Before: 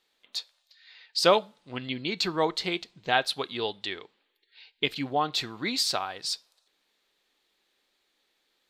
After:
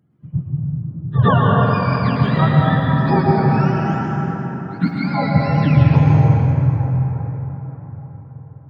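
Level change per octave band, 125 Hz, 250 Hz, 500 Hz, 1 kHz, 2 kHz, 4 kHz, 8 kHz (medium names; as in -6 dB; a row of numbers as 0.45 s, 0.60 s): +31.5 dB, +18.5 dB, +7.0 dB, +10.5 dB, +6.5 dB, -7.0 dB, under -15 dB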